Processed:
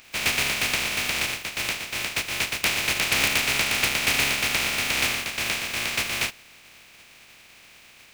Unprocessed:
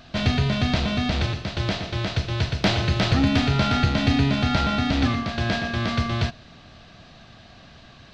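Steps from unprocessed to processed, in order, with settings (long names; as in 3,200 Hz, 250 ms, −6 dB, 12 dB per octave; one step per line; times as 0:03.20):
compressing power law on the bin magnitudes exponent 0.18
parametric band 2,400 Hz +11.5 dB 0.64 octaves
level −6.5 dB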